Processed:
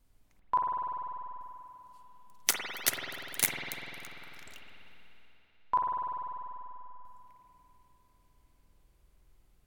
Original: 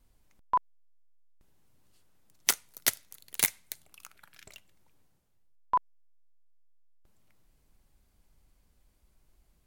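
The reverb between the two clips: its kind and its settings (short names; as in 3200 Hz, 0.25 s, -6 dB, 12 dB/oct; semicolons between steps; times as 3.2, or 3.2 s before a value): spring tank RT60 3.3 s, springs 49 ms, chirp 40 ms, DRR -1 dB; gain -2 dB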